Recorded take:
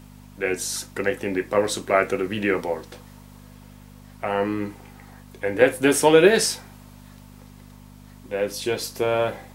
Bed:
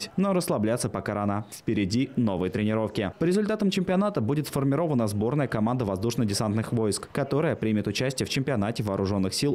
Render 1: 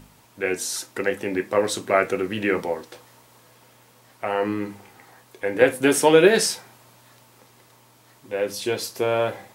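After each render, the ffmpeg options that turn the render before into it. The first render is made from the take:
-af "bandreject=f=50:t=h:w=4,bandreject=f=100:t=h:w=4,bandreject=f=150:t=h:w=4,bandreject=f=200:t=h:w=4,bandreject=f=250:t=h:w=4"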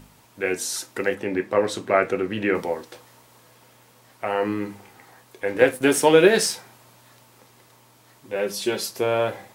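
-filter_complex "[0:a]asettb=1/sr,asplit=3[a][b][c];[a]atrim=end=1.144[d];[b]atrim=start=1.14:end=2.55,asetpts=PTS-STARTPTS,afade=t=in:d=0.004:c=qsin,afade=t=out:st=1.406:d=0.004:c=qsin,aemphasis=mode=reproduction:type=cd[e];[c]atrim=start=2.546[f];[d][e]acrossfade=d=0.004:c1=hsin:c2=qsin[g];[g][f]acrossfade=d=0.004:c1=qsin:c2=hsin,asettb=1/sr,asplit=3[h][i][j];[h]atrim=end=5.484[k];[i]atrim=start=5.48:end=6.54,asetpts=PTS-STARTPTS,afade=t=in:d=0.004:c=qsin,afade=t=out:st=1.056:d=0.004:c=qsin,aeval=exprs='sgn(val(0))*max(abs(val(0))-0.00668,0)':c=same[l];[j]atrim=start=6.536[m];[k][l]acrossfade=d=0.004:c1=hsin:c2=qsin[n];[n][m]acrossfade=d=0.004:c1=qsin:c2=hsin,asettb=1/sr,asplit=3[o][p][q];[o]atrim=end=8.354[r];[p]atrim=start=8.35:end=8.91,asetpts=PTS-STARTPTS,afade=t=in:d=0.004:c=qsin,afade=t=out:st=0.556:d=0.004:c=qsin,aecho=1:1:5.2:0.65,atrim=end_sample=24696[s];[q]atrim=start=8.906[t];[r][s]acrossfade=d=0.004:c1=hsin:c2=qsin[u];[u][t]acrossfade=d=0.004:c1=qsin:c2=hsin"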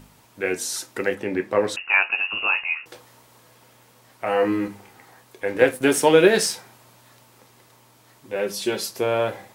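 -filter_complex "[0:a]asettb=1/sr,asplit=3[a][b][c];[a]atrim=end=1.764[d];[b]atrim=start=1.76:end=2.86,asetpts=PTS-STARTPTS,afade=t=in:d=0.004:c=qsin,afade=t=out:st=1.096:d=0.004:c=qsin,lowpass=f=2.6k:t=q:w=0.5098,lowpass=f=2.6k:t=q:w=0.6013,lowpass=f=2.6k:t=q:w=0.9,lowpass=f=2.6k:t=q:w=2.563,afreqshift=-3000[e];[c]atrim=start=2.856[f];[d][e]acrossfade=d=0.004:c1=hsin:c2=qsin[g];[g][f]acrossfade=d=0.004:c1=qsin:c2=hsin,asettb=1/sr,asplit=3[h][i][j];[h]atrim=end=4.254[k];[i]atrim=start=4.25:end=4.68,asetpts=PTS-STARTPTS,afade=t=in:d=0.004:c=qsin,afade=t=out:st=0.426:d=0.004:c=qsin,asplit=2[l][m];[m]adelay=16,volume=-2.5dB[n];[l][n]amix=inputs=2:normalize=0,atrim=end_sample=18963[o];[j]atrim=start=4.676[p];[k][o]acrossfade=d=0.004:c1=hsin:c2=qsin[q];[q][p]acrossfade=d=0.004:c1=qsin:c2=hsin"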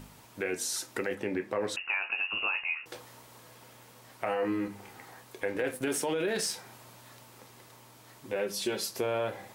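-af "alimiter=limit=-14dB:level=0:latency=1:release=19,acompressor=threshold=-34dB:ratio=2"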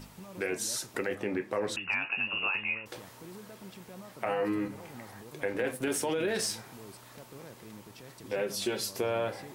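-filter_complex "[1:a]volume=-24dB[a];[0:a][a]amix=inputs=2:normalize=0"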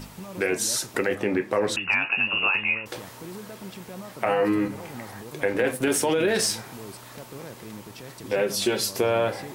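-af "volume=8dB"

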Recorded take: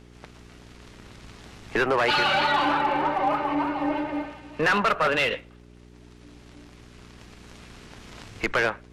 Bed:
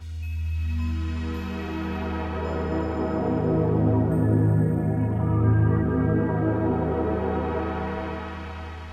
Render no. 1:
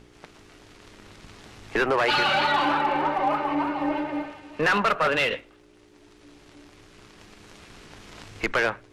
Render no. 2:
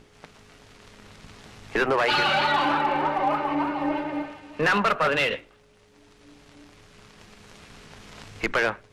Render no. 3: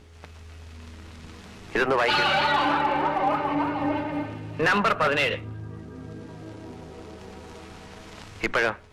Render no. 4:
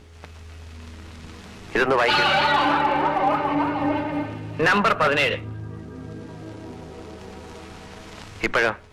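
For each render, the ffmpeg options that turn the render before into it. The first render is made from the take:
-af "bandreject=f=60:t=h:w=4,bandreject=f=120:t=h:w=4,bandreject=f=180:t=h:w=4,bandreject=f=240:t=h:w=4"
-af "equalizer=f=170:w=1.5:g=2.5,bandreject=f=60:t=h:w=6,bandreject=f=120:t=h:w=6,bandreject=f=180:t=h:w=6,bandreject=f=240:t=h:w=6,bandreject=f=300:t=h:w=6,bandreject=f=360:t=h:w=6"
-filter_complex "[1:a]volume=-17.5dB[a];[0:a][a]amix=inputs=2:normalize=0"
-af "volume=3dB"

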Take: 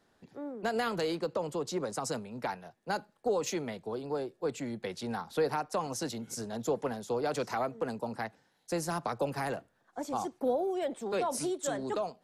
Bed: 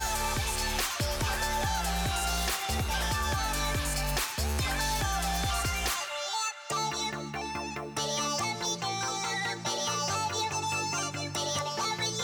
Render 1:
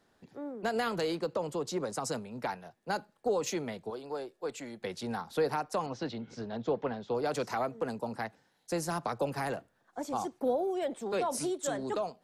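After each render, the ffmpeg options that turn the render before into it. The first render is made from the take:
-filter_complex "[0:a]asettb=1/sr,asplit=3[a][b][c];[a]atrim=end=3.904[d];[b]atrim=start=3.9:end=4.82,asetpts=PTS-STARTPTS,afade=t=in:d=0.004:c=qsin,afade=t=out:st=0.916:d=0.004:c=qsin,equalizer=f=100:w=0.36:g=-11.5[e];[c]atrim=start=4.816[f];[d][e]acrossfade=d=0.004:c1=hsin:c2=qsin[g];[g][f]acrossfade=d=0.004:c1=qsin:c2=hsin,asettb=1/sr,asplit=3[h][i][j];[h]atrim=end=5.864[k];[i]atrim=start=5.86:end=7.15,asetpts=PTS-STARTPTS,afade=t=in:d=0.004:c=qsin,afade=t=out:st=1.286:d=0.004:c=qsin,lowpass=f=4.1k:w=0.5412,lowpass=f=4.1k:w=1.3066[l];[j]atrim=start=7.146[m];[k][l]acrossfade=d=0.004:c1=hsin:c2=qsin[n];[n][m]acrossfade=d=0.004:c1=qsin:c2=hsin"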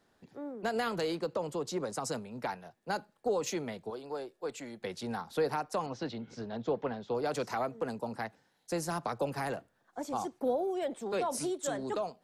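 -af "volume=-1dB"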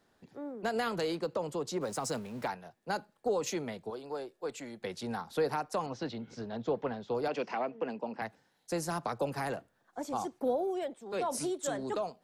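-filter_complex "[0:a]asettb=1/sr,asplit=3[a][b][c];[a]atrim=end=1.814[d];[b]atrim=start=1.81:end=2.48,asetpts=PTS-STARTPTS,afade=t=in:d=0.004:c=qsin,afade=t=out:st=0.666:d=0.004:c=qsin,aeval=exprs='val(0)+0.5*0.00422*sgn(val(0))':c=same[e];[c]atrim=start=2.476[f];[d][e]acrossfade=d=0.004:c1=hsin:c2=qsin[g];[g][f]acrossfade=d=0.004:c1=qsin:c2=hsin,asettb=1/sr,asplit=3[h][i][j];[h]atrim=end=7.284[k];[i]atrim=start=7.28:end=8.22,asetpts=PTS-STARTPTS,afade=t=in:d=0.004:c=qsin,afade=t=out:st=0.936:d=0.004:c=qsin,highpass=f=180:w=0.5412,highpass=f=180:w=1.3066,equalizer=f=1.3k:t=q:w=4:g=-5,equalizer=f=2.7k:t=q:w=4:g=8,equalizer=f=3.9k:t=q:w=4:g=-9,lowpass=f=4.7k:w=0.5412,lowpass=f=4.7k:w=1.3066[l];[j]atrim=start=8.216[m];[k][l]acrossfade=d=0.004:c1=hsin:c2=qsin[n];[n][m]acrossfade=d=0.004:c1=qsin:c2=hsin,asplit=3[o][p][q];[o]atrim=end=10.95,asetpts=PTS-STARTPTS,afade=t=out:st=10.71:d=0.24:c=qsin:silence=0.354813[r];[p]atrim=start=10.95:end=11.06,asetpts=PTS-STARTPTS,volume=-9dB[s];[q]atrim=start=11.06,asetpts=PTS-STARTPTS,afade=t=in:d=0.24:c=qsin:silence=0.354813[t];[r][s][t]concat=n=3:v=0:a=1"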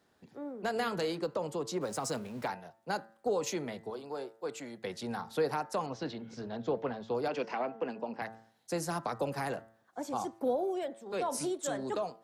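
-af "highpass=49,bandreject=f=112:t=h:w=4,bandreject=f=224:t=h:w=4,bandreject=f=336:t=h:w=4,bandreject=f=448:t=h:w=4,bandreject=f=560:t=h:w=4,bandreject=f=672:t=h:w=4,bandreject=f=784:t=h:w=4,bandreject=f=896:t=h:w=4,bandreject=f=1.008k:t=h:w=4,bandreject=f=1.12k:t=h:w=4,bandreject=f=1.232k:t=h:w=4,bandreject=f=1.344k:t=h:w=4,bandreject=f=1.456k:t=h:w=4,bandreject=f=1.568k:t=h:w=4,bandreject=f=1.68k:t=h:w=4,bandreject=f=1.792k:t=h:w=4,bandreject=f=1.904k:t=h:w=4,bandreject=f=2.016k:t=h:w=4"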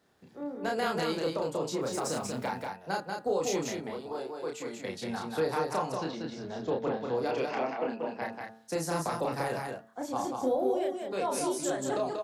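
-filter_complex "[0:a]asplit=2[a][b];[b]adelay=31,volume=-2.5dB[c];[a][c]amix=inputs=2:normalize=0,asplit=2[d][e];[e]aecho=0:1:188:0.631[f];[d][f]amix=inputs=2:normalize=0"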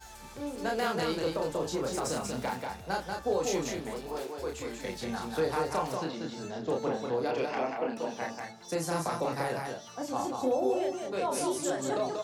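-filter_complex "[1:a]volume=-18.5dB[a];[0:a][a]amix=inputs=2:normalize=0"

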